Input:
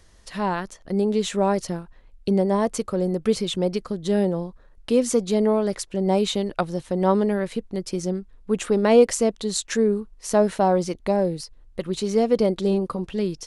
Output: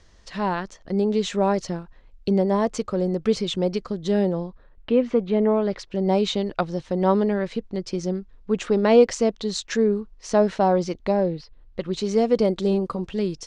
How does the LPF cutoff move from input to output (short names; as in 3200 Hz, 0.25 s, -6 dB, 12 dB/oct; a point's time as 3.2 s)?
LPF 24 dB/oct
4.32 s 6800 Hz
4.95 s 2900 Hz
5.46 s 2900 Hz
5.98 s 6200 Hz
11.08 s 6200 Hz
11.39 s 3700 Hz
12.16 s 7900 Hz